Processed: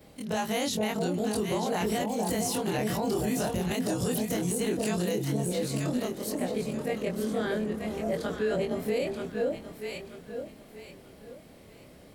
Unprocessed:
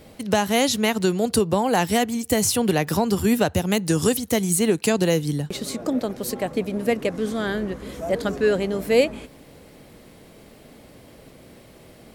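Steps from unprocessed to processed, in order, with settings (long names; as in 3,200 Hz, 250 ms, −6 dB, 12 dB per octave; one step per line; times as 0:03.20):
every overlapping window played backwards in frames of 56 ms
delay that swaps between a low-pass and a high-pass 466 ms, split 840 Hz, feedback 55%, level −2.5 dB
brickwall limiter −16.5 dBFS, peak gain reduction 9 dB
level −3.5 dB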